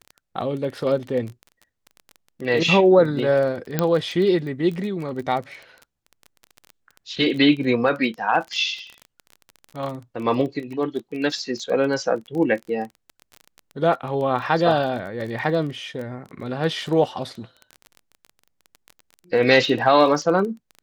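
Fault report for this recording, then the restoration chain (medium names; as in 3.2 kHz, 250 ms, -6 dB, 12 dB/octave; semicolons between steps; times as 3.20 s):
crackle 21 per s -29 dBFS
3.79 s: pop -6 dBFS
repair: de-click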